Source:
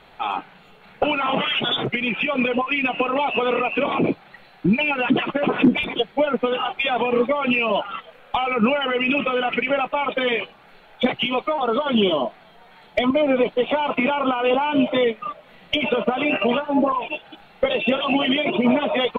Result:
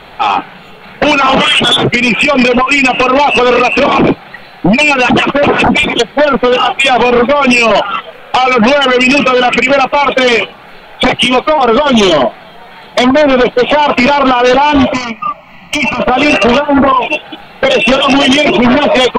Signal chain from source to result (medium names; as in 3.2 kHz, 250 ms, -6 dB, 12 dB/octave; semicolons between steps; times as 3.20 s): sine folder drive 11 dB, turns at -4.5 dBFS; 14.93–16.00 s: static phaser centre 2.4 kHz, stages 8; trim +1 dB